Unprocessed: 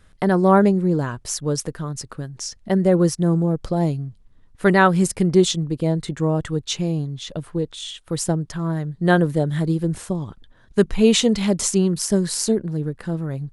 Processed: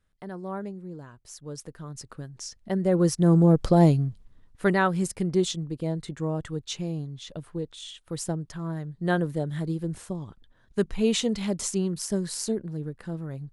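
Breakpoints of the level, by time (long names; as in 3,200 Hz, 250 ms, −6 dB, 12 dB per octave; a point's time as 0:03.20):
0:01.16 −20 dB
0:02.10 −8 dB
0:02.80 −8 dB
0:03.51 +3 dB
0:04.06 +3 dB
0:04.82 −8.5 dB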